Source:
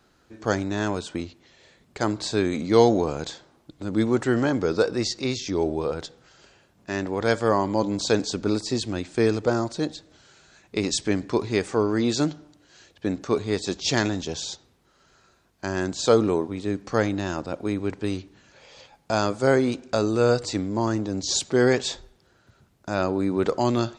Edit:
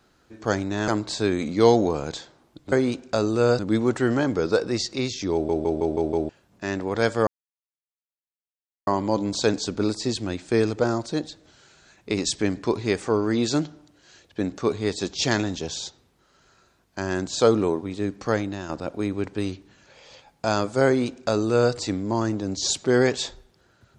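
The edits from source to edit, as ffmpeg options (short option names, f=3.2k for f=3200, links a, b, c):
-filter_complex "[0:a]asplit=12[a][b][c][d][e][f][g][h][i][j][k][l];[a]atrim=end=0.882[m];[b]atrim=start=2.008:end=3.852[n];[c]atrim=start=19.518:end=20.392[o];[d]atrim=start=3.848:end=5.752[p];[e]atrim=start=5.588:end=5.752[q];[f]atrim=start=5.588:end=5.752[r];[g]atrim=start=5.588:end=5.752[s];[h]atrim=start=5.588:end=5.752[t];[i]atrim=start=5.588:end=5.752[u];[j]atrim=start=6.548:end=7.53,asetpts=PTS-STARTPTS,afade=t=out:st=0.978:d=0.004:c=hsin,apad=pad_dur=1.6[v];[k]atrim=start=7.53:end=17.35,asetpts=PTS-STARTPTS,afade=t=in:d=0.004:c=hsin,afade=t=out:st=9.36:d=0.46:silence=0.446684[w];[l]atrim=start=17.35,asetpts=PTS-STARTPTS,afade=t=in:d=0.004:c=hsin:silence=0.446684[x];[m][n]acrossfade=d=0.004:c1=hsin:c2=hsin[y];[y][o]acrossfade=d=0.004:c1=hsin:c2=hsin[z];[z][p]acrossfade=d=0.004:c1=hsin:c2=hsin[aa];[aa][q]acrossfade=d=0.004:c1=hsin:c2=hsin[ab];[ab][r]acrossfade=d=0.004:c1=hsin:c2=hsin[ac];[ac][s]acrossfade=d=0.004:c1=hsin:c2=hsin[ad];[ad][t]acrossfade=d=0.004:c1=hsin:c2=hsin[ae];[ae][u]acrossfade=d=0.004:c1=hsin:c2=hsin[af];[v][w][x]concat=n=3:v=0:a=1[ag];[af][ag]acrossfade=d=0.004:c1=hsin:c2=hsin"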